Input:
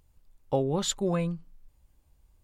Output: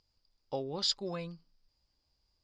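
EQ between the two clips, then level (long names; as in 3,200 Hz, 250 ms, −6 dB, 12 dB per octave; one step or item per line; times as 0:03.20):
low-pass with resonance 4,900 Hz, resonance Q 16
low-shelf EQ 93 Hz −10.5 dB
parametric band 150 Hz −2.5 dB 2 octaves
−8.5 dB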